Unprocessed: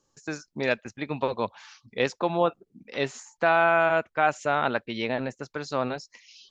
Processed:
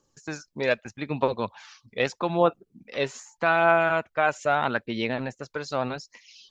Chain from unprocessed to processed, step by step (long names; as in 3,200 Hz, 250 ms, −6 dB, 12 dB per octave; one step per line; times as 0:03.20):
phase shifter 0.81 Hz, delay 2.1 ms, feedback 34%